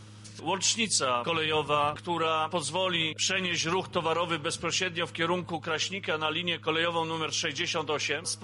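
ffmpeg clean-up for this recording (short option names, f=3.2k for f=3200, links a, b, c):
-af "bandreject=f=105.5:t=h:w=4,bandreject=f=211:t=h:w=4,bandreject=f=316.5:t=h:w=4"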